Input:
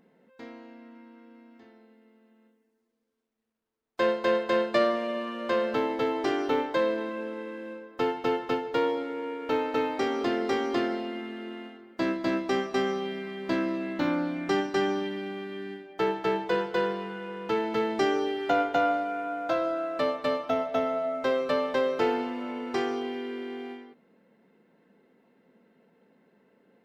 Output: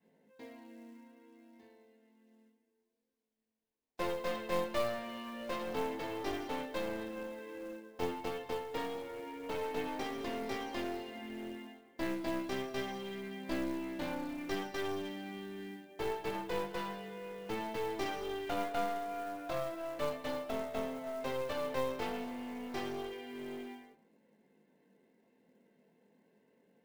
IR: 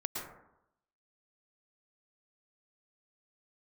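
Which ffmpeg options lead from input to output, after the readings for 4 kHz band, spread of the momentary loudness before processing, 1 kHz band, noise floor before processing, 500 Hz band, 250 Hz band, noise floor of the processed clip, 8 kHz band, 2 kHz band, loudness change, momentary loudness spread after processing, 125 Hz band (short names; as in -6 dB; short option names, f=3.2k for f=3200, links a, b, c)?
-8.0 dB, 12 LU, -10.0 dB, -72 dBFS, -11.0 dB, -10.0 dB, -79 dBFS, n/a, -10.0 dB, -10.5 dB, 9 LU, -6.0 dB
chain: -filter_complex "[0:a]adynamicequalizer=threshold=0.0178:dfrequency=350:dqfactor=0.86:tfrequency=350:tqfactor=0.86:attack=5:release=100:ratio=0.375:range=2:mode=cutabove:tftype=bell,flanger=delay=18.5:depth=6.2:speed=0.29,acrusher=bits=5:mode=log:mix=0:aa=0.000001,equalizer=f=1.3k:t=o:w=0.25:g=-13.5,aeval=exprs='clip(val(0),-1,0.0126)':c=same,asplit=2[a][b];[1:a]atrim=start_sample=2205[c];[b][c]afir=irnorm=-1:irlink=0,volume=-18.5dB[d];[a][d]amix=inputs=2:normalize=0,volume=-4dB"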